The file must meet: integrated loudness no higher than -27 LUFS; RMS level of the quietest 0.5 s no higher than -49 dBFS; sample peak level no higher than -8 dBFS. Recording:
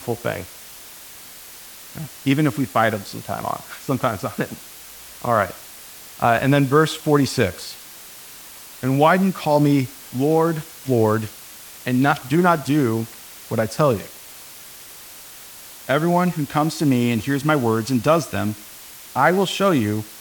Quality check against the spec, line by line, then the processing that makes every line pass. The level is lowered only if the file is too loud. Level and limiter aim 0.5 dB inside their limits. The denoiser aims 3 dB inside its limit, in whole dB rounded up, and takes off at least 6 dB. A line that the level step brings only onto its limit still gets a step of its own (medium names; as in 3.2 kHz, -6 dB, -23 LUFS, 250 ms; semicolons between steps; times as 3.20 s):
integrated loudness -20.5 LUFS: fail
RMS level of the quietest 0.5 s -40 dBFS: fail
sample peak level -2.5 dBFS: fail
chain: noise reduction 6 dB, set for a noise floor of -40 dBFS; trim -7 dB